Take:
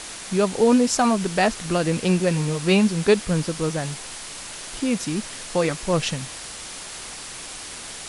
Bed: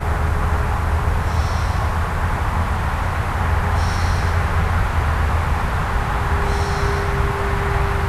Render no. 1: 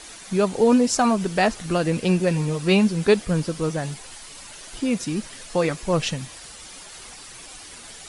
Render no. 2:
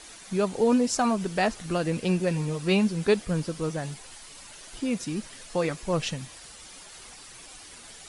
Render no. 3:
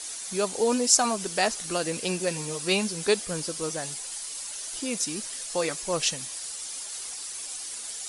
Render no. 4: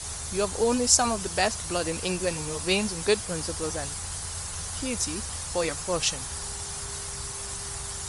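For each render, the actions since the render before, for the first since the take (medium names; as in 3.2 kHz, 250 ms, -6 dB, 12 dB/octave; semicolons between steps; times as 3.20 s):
noise reduction 9 dB, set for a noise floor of -37 dBFS
trim -5 dB
tone controls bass -11 dB, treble +13 dB
add bed -21.5 dB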